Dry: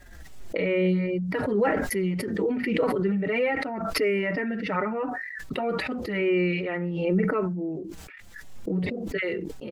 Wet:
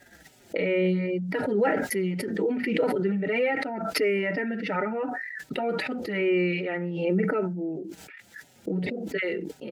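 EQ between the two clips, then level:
high-pass filter 160 Hz 12 dB per octave
Butterworth band-reject 1,100 Hz, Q 4.3
0.0 dB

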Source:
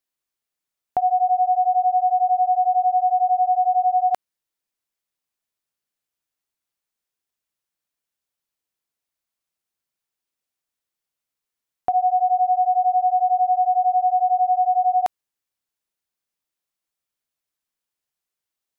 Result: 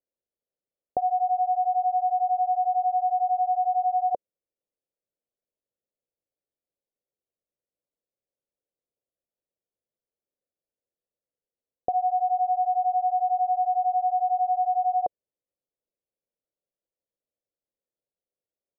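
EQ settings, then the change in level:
transistor ladder low-pass 600 Hz, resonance 60%
+7.0 dB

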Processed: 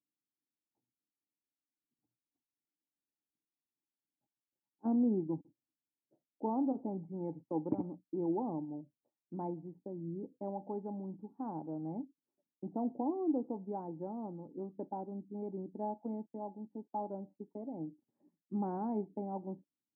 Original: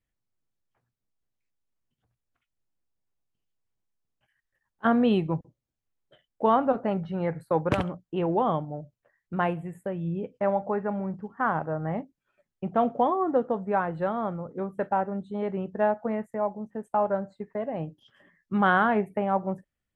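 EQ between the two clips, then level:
formant resonators in series u
high-pass filter 150 Hz
high-frequency loss of the air 270 metres
+1.0 dB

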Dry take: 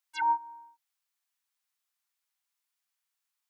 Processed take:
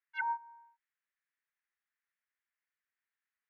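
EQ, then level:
resonant band-pass 1,800 Hz, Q 3.6
high-frequency loss of the air 270 metres
+7.0 dB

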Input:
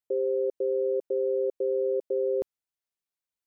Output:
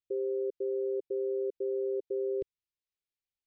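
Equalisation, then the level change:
Butterworth band-reject 740 Hz, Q 0.68
high-frequency loss of the air 200 metres
phaser with its sweep stopped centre 560 Hz, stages 4
+3.5 dB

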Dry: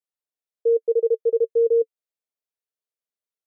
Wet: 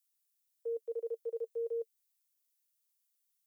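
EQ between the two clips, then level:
high-pass filter 580 Hz 12 dB per octave
first difference
+11.0 dB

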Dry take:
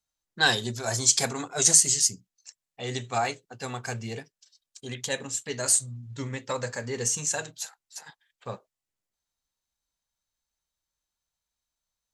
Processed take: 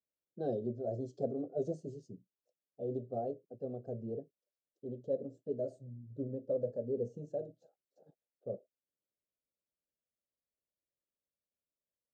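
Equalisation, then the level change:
high-pass filter 460 Hz 6 dB per octave
elliptic low-pass filter 600 Hz, stop band 40 dB
high-frequency loss of the air 170 metres
+3.0 dB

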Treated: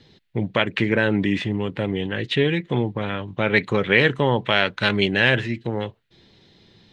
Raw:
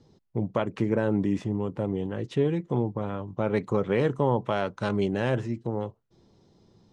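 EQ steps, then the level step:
flat-topped bell 2,600 Hz +15.5 dB
+4.0 dB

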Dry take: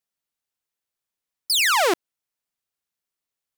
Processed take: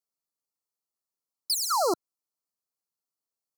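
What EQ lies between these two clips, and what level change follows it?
high-pass filter 130 Hz
linear-phase brick-wall band-stop 1,400–4,000 Hz
−4.5 dB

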